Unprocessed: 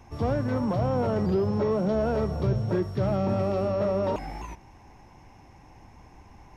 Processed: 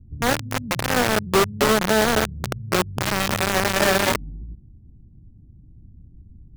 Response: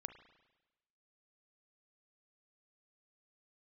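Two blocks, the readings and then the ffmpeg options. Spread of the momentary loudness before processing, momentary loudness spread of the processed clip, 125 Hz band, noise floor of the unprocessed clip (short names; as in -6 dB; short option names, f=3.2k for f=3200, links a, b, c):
4 LU, 9 LU, -1.5 dB, -52 dBFS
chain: -filter_complex "[0:a]highshelf=f=3.8k:g=-3.5,acrossover=split=240[a][b];[a]acompressor=threshold=-37dB:ratio=10[c];[b]acrusher=bits=3:mix=0:aa=0.000001[d];[c][d]amix=inputs=2:normalize=0,volume=7dB"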